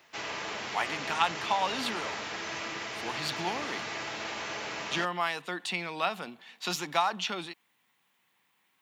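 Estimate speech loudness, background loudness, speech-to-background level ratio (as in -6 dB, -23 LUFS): -32.5 LUFS, -36.0 LUFS, 3.5 dB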